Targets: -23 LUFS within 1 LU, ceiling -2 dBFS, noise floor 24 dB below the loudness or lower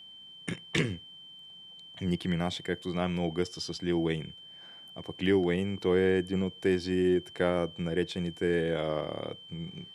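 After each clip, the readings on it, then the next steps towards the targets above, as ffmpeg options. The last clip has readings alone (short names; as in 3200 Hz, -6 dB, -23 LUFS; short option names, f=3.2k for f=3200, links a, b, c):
steady tone 3100 Hz; tone level -47 dBFS; loudness -30.5 LUFS; peak -11.0 dBFS; loudness target -23.0 LUFS
-> -af "bandreject=f=3.1k:w=30"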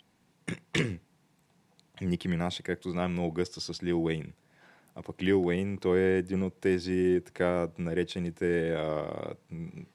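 steady tone none; loudness -30.5 LUFS; peak -11.5 dBFS; loudness target -23.0 LUFS
-> -af "volume=7.5dB"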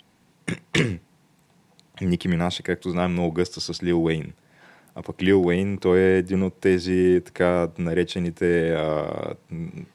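loudness -23.0 LUFS; peak -4.0 dBFS; noise floor -61 dBFS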